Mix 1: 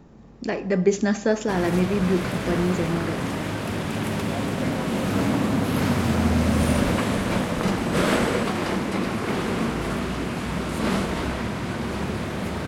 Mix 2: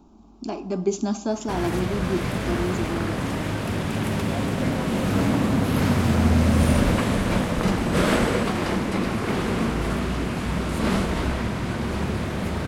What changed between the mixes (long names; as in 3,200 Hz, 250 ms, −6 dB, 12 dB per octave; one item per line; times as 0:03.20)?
speech: add phaser with its sweep stopped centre 500 Hz, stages 6
background: add low-shelf EQ 70 Hz +10.5 dB